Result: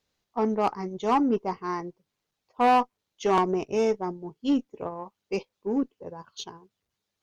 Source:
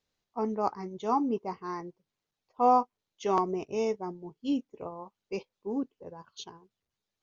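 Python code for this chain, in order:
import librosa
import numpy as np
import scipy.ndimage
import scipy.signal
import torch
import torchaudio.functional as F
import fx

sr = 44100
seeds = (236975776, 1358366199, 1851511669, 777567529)

y = 10.0 ** (-21.5 / 20.0) * np.tanh(x / 10.0 ** (-21.5 / 20.0))
y = fx.cheby_harmonics(y, sr, harmonics=(2, 7), levels_db=(-20, -32), full_scale_db=-21.5)
y = y * 10.0 ** (6.5 / 20.0)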